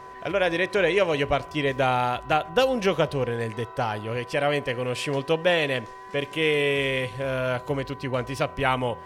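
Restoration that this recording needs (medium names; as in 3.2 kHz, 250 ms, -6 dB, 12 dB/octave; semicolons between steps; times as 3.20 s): de-hum 381 Hz, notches 5; band-stop 1 kHz, Q 30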